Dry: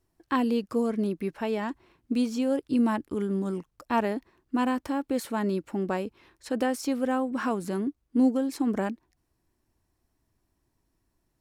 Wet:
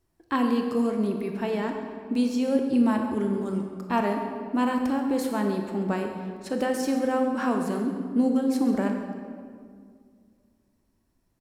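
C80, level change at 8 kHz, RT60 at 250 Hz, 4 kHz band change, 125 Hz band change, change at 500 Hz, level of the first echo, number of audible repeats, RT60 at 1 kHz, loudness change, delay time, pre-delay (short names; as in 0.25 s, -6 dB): 6.0 dB, +1.0 dB, 2.7 s, +1.5 dB, +2.5 dB, +2.0 dB, -15.0 dB, 1, 1.9 s, +2.0 dB, 0.135 s, 22 ms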